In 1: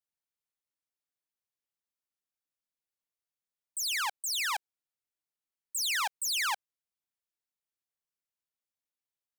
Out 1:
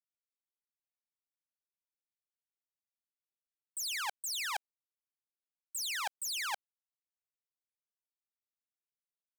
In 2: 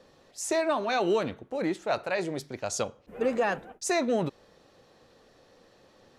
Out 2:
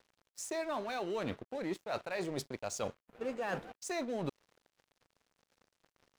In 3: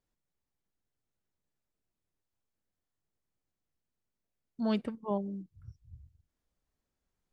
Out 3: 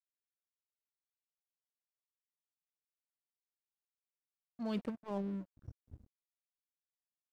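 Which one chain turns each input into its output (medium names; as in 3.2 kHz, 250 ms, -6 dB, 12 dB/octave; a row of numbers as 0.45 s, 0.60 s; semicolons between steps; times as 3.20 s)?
reverse; compression 10:1, threshold -35 dBFS; reverse; crossover distortion -53 dBFS; trim +2 dB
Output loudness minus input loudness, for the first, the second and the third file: -5.5 LU, -9.5 LU, -5.5 LU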